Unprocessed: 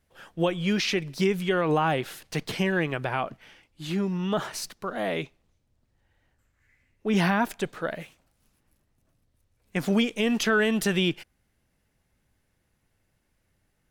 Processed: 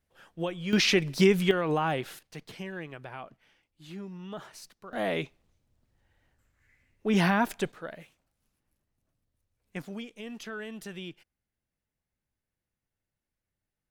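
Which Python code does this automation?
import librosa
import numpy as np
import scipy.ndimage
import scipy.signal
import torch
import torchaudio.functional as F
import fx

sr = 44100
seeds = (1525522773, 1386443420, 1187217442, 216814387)

y = fx.gain(x, sr, db=fx.steps((0.0, -7.5), (0.73, 3.0), (1.51, -4.0), (2.19, -13.5), (4.93, -1.0), (7.72, -9.5), (9.82, -16.5)))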